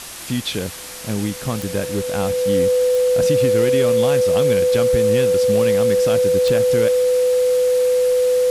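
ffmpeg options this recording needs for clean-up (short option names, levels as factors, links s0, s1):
-af "adeclick=t=4,bandreject=f=500:w=30,afwtdn=0.025"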